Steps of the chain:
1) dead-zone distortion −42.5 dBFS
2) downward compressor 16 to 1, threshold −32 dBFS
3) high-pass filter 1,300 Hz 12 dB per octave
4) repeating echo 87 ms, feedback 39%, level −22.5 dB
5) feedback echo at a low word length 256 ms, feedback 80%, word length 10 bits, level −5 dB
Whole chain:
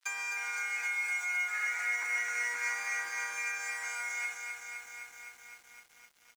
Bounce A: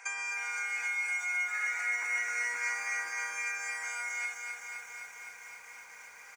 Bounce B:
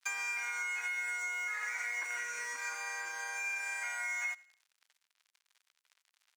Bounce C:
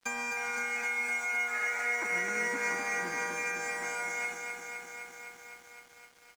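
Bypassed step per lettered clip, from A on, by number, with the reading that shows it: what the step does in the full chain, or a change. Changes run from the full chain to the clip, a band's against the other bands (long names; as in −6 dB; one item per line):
1, distortion level −21 dB
5, change in momentary loudness spread −11 LU
3, 500 Hz band +16.0 dB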